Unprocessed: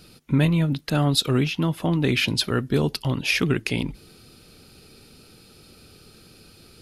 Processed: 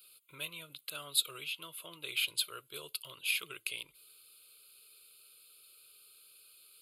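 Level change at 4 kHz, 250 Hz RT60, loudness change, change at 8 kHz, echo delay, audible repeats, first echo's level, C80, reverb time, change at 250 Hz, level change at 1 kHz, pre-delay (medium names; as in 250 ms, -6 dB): -8.5 dB, no reverb, -13.5 dB, -4.5 dB, no echo, no echo, no echo, no reverb, no reverb, -37.0 dB, -19.0 dB, no reverb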